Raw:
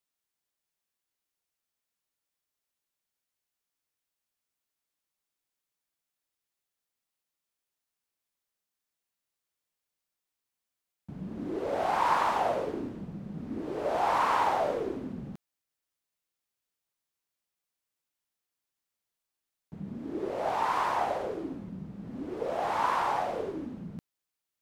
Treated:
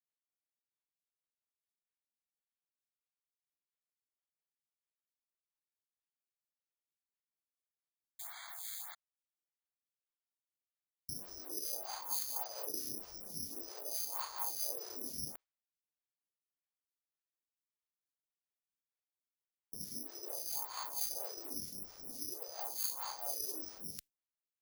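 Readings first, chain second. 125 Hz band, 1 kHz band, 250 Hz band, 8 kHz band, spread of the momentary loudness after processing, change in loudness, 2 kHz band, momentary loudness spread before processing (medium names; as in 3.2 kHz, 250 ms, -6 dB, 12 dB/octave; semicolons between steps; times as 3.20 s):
-17.5 dB, -21.5 dB, -18.5 dB, +12.0 dB, 9 LU, -9.0 dB, -19.0 dB, 16 LU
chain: gate with hold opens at -37 dBFS; peaking EQ 180 Hz -14 dB 1.3 oct; reverse; compression 5:1, threshold -44 dBFS, peak gain reduction 19 dB; reverse; harmonic tremolo 4.4 Hz, depth 70%, crossover 470 Hz; painted sound noise, 8.19–8.95 s, 650–2300 Hz -54 dBFS; careless resampling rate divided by 8×, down none, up zero stuff; lamp-driven phase shifter 1.7 Hz; trim +1 dB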